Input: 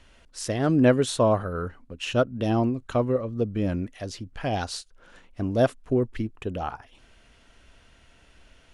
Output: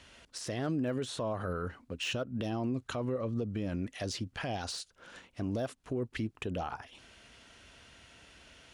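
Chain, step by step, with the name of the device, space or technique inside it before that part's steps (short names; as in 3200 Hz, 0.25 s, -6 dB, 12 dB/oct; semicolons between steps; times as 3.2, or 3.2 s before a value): broadcast voice chain (HPF 72 Hz 12 dB/oct; de-esser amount 95%; compressor 4:1, threshold -25 dBFS, peak gain reduction 9.5 dB; bell 5000 Hz +4.5 dB 2.6 oct; limiter -25.5 dBFS, peak gain reduction 11 dB)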